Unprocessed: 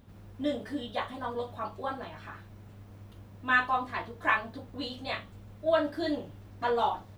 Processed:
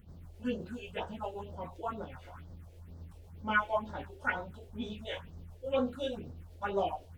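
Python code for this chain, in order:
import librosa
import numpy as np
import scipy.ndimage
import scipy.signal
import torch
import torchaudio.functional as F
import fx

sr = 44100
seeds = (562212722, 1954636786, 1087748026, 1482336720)

y = fx.pitch_heads(x, sr, semitones=-3.0)
y = fx.phaser_stages(y, sr, stages=4, low_hz=180.0, high_hz=2600.0, hz=2.1, feedback_pct=25)
y = fx.attack_slew(y, sr, db_per_s=450.0)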